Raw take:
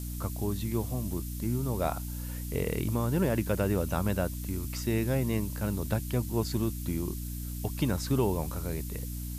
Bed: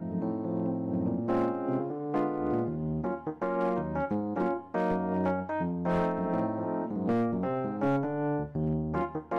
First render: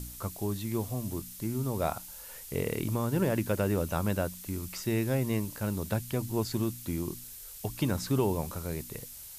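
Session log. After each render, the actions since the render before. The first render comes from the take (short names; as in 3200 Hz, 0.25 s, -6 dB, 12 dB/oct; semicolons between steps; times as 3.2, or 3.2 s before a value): de-hum 60 Hz, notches 5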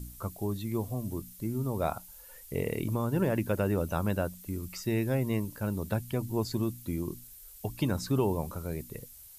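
denoiser 9 dB, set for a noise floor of -46 dBFS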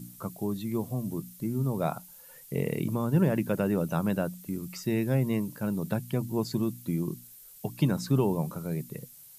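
resonant low shelf 100 Hz -13.5 dB, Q 3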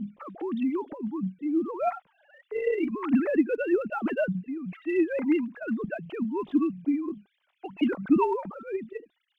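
sine-wave speech; phaser 1.6 Hz, delay 3.3 ms, feedback 52%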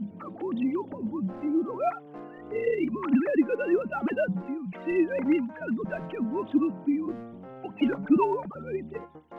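add bed -13.5 dB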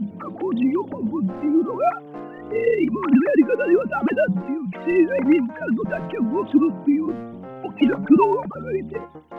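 gain +7.5 dB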